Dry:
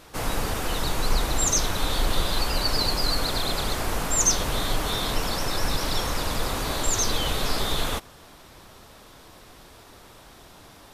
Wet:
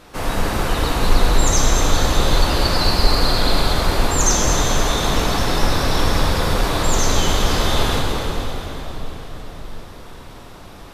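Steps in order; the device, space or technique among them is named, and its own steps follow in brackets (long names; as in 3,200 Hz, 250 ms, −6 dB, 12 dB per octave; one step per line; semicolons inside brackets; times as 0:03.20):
swimming-pool hall (convolution reverb RT60 4.7 s, pre-delay 4 ms, DRR −2.5 dB; high-shelf EQ 4,700 Hz −7 dB)
level +4 dB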